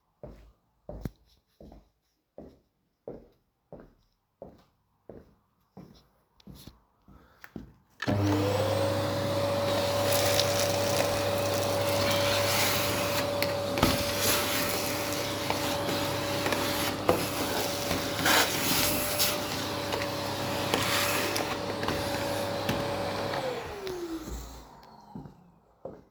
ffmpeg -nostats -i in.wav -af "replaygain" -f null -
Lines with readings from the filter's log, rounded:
track_gain = +9.6 dB
track_peak = 0.431